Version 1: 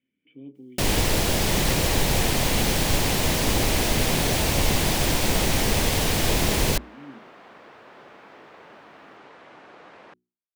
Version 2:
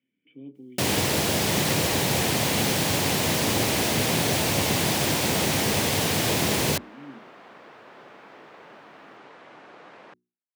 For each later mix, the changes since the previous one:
master: add high-pass filter 97 Hz 24 dB per octave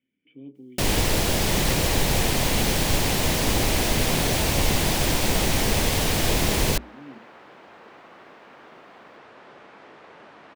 second sound: entry +1.50 s
master: remove high-pass filter 97 Hz 24 dB per octave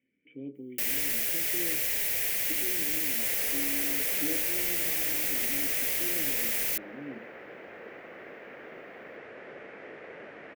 first sound: add first-order pre-emphasis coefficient 0.97
master: add octave-band graphic EQ 500/1,000/2,000/4,000/8,000 Hz +8/−10/+10/−9/−6 dB

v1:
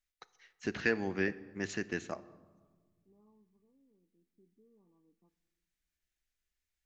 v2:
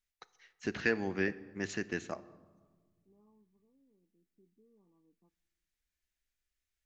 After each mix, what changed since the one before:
second voice: send −7.0 dB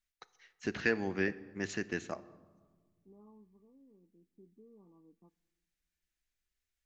second voice +8.5 dB

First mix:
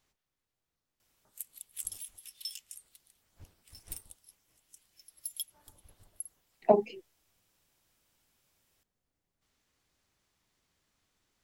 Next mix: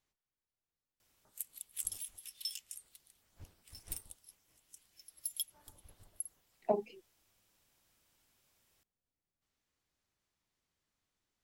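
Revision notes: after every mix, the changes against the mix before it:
speech −9.0 dB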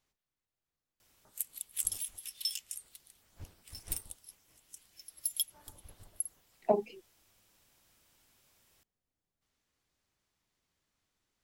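speech +4.0 dB
background +5.5 dB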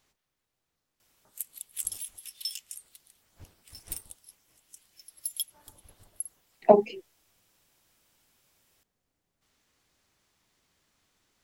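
speech +10.5 dB
master: add low-shelf EQ 110 Hz −4.5 dB

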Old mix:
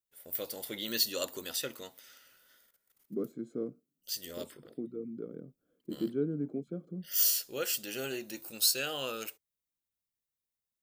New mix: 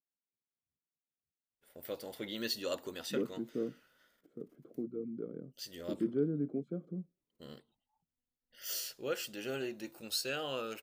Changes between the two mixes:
first voice: entry +1.50 s
master: add low-pass filter 2,100 Hz 6 dB per octave

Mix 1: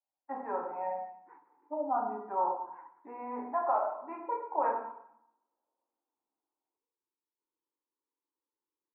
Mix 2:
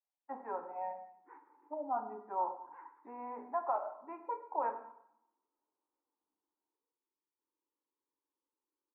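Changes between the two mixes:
speech: send −10.5 dB
background: send on

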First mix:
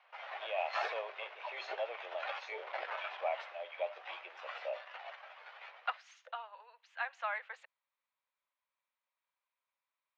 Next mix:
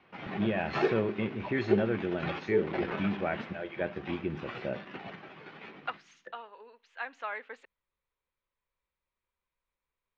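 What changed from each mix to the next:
first voice: remove Butterworth band-reject 1,600 Hz, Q 1.4
background: send +11.5 dB
master: remove Butterworth high-pass 580 Hz 48 dB per octave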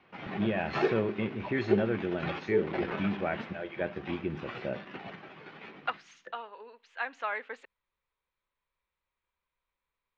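second voice +3.5 dB

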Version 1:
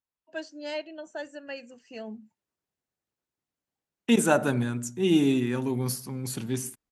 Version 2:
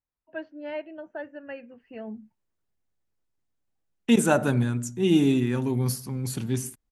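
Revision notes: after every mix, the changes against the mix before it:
first voice: add low-pass filter 2,400 Hz 24 dB per octave
master: remove high-pass filter 190 Hz 6 dB per octave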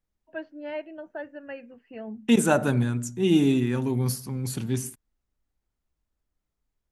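second voice: entry −1.80 s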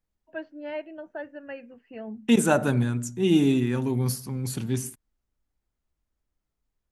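nothing changed

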